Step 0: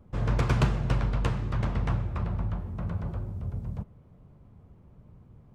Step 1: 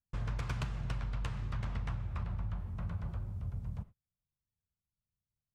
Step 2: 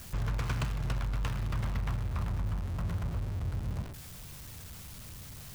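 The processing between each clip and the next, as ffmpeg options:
-af "agate=range=0.0158:threshold=0.00891:ratio=16:detection=peak,equalizer=f=370:w=0.6:g=-10,acompressor=threshold=0.0316:ratio=6,volume=0.75"
-af "aeval=exprs='val(0)+0.5*0.0106*sgn(val(0))':c=same,volume=1.33"

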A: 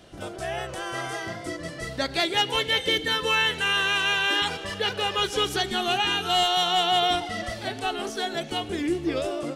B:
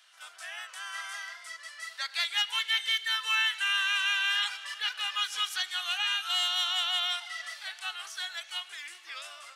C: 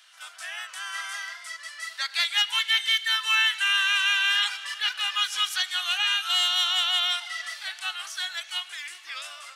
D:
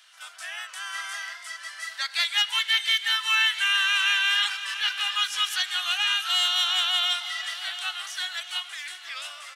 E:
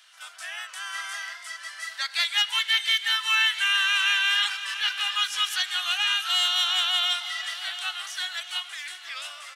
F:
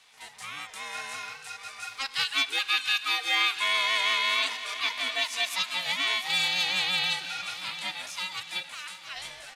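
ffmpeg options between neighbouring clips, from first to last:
-af "highpass=f=1200:w=0.5412,highpass=f=1200:w=1.3066,volume=0.668"
-af "lowshelf=f=420:g=-12,volume=1.88"
-af "aecho=1:1:689|1378|2067|2756:0.237|0.102|0.0438|0.0189"
-af anull
-af "aeval=exprs='val(0)*sin(2*PI*550*n/s)':c=same"

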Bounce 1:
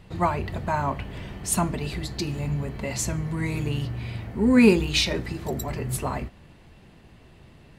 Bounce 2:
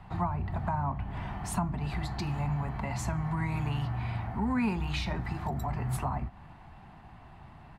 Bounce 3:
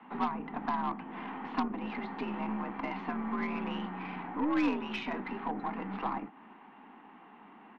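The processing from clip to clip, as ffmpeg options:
-filter_complex "[0:a]firequalizer=gain_entry='entry(150,0);entry(500,-11);entry(750,10);entry(1800,0);entry(2900,-6);entry(6100,-11)':delay=0.05:min_phase=1,acrossover=split=230|470[s0][s1][s2];[s0]acompressor=threshold=0.0355:ratio=4[s3];[s1]acompressor=threshold=0.00501:ratio=4[s4];[s2]acompressor=threshold=0.0158:ratio=4[s5];[s3][s4][s5]amix=inputs=3:normalize=0"
-af "highpass=f=160:t=q:w=0.5412,highpass=f=160:t=q:w=1.307,lowpass=f=3100:t=q:w=0.5176,lowpass=f=3100:t=q:w=0.7071,lowpass=f=3100:t=q:w=1.932,afreqshift=66,aeval=exprs='0.133*(cos(1*acos(clip(val(0)/0.133,-1,1)))-cos(1*PI/2))+0.0237*(cos(4*acos(clip(val(0)/0.133,-1,1)))-cos(4*PI/2))+0.0211*(cos(6*acos(clip(val(0)/0.133,-1,1)))-cos(6*PI/2))':c=same"

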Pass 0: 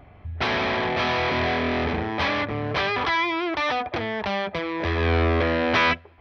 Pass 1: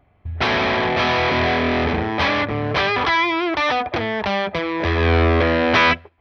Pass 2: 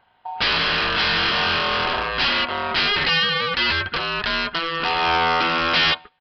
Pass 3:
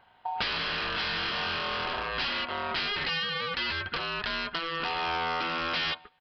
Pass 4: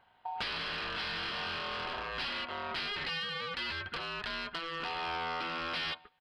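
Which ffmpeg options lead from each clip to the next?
-af "agate=range=0.178:threshold=0.0141:ratio=16:detection=peak,volume=1.78"
-af "aeval=exprs='val(0)*sin(2*PI*830*n/s)':c=same,crystalizer=i=6.5:c=0,aresample=11025,volume=3.76,asoftclip=hard,volume=0.266,aresample=44100,volume=0.75"
-af "acompressor=threshold=0.0355:ratio=5"
-af "asoftclip=type=tanh:threshold=0.126,volume=0.531"

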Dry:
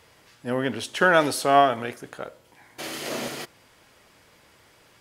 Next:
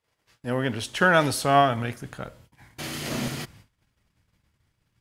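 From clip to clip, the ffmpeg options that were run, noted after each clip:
-af "agate=range=0.0501:threshold=0.00224:ratio=16:detection=peak,asubboost=boost=10:cutoff=160"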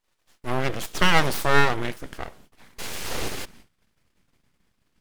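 -af "aeval=exprs='abs(val(0))':c=same,volume=1.41"

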